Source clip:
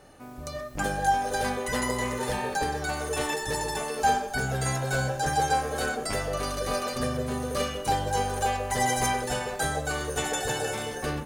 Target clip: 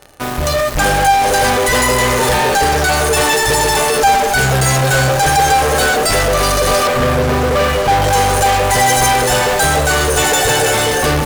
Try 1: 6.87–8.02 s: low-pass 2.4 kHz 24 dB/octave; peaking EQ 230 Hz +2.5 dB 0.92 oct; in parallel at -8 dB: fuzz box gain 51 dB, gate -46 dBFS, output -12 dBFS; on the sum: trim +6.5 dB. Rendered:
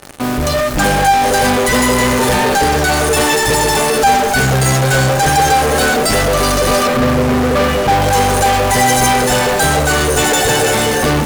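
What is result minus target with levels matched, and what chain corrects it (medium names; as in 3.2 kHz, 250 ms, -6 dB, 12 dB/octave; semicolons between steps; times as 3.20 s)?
250 Hz band +5.0 dB
6.87–8.02 s: low-pass 2.4 kHz 24 dB/octave; peaking EQ 230 Hz -6.5 dB 0.92 oct; in parallel at -8 dB: fuzz box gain 51 dB, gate -46 dBFS, output -12 dBFS; on the sum: trim +6.5 dB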